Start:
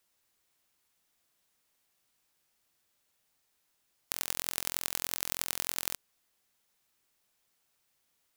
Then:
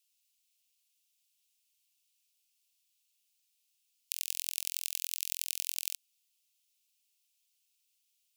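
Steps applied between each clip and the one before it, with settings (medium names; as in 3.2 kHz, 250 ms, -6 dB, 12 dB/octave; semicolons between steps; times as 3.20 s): elliptic high-pass 2.6 kHz, stop band 80 dB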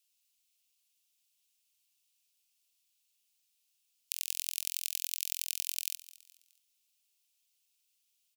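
feedback delay 210 ms, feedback 39%, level -18 dB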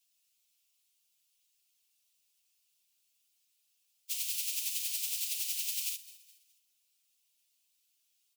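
phase randomisation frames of 50 ms; trim +1.5 dB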